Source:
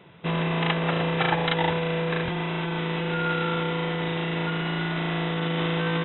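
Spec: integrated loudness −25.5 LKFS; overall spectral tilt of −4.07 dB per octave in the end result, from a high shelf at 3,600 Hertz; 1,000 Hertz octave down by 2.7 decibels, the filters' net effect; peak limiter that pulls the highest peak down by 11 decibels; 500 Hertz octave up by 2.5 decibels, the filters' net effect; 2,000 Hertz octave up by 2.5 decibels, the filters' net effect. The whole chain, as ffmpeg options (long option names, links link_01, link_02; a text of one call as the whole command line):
ffmpeg -i in.wav -af "equalizer=frequency=500:width_type=o:gain=4,equalizer=frequency=1000:width_type=o:gain=-6.5,equalizer=frequency=2000:width_type=o:gain=4,highshelf=frequency=3600:gain=3,volume=0.5dB,alimiter=limit=-16dB:level=0:latency=1" out.wav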